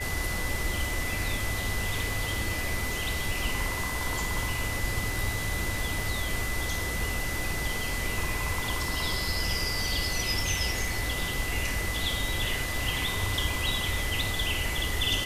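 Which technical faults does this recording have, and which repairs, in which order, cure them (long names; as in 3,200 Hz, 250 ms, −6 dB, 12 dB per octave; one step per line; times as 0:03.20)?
whistle 2,000 Hz −34 dBFS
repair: notch filter 2,000 Hz, Q 30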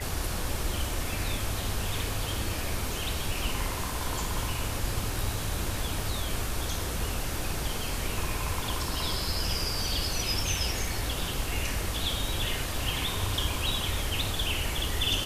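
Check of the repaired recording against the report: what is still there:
none of them is left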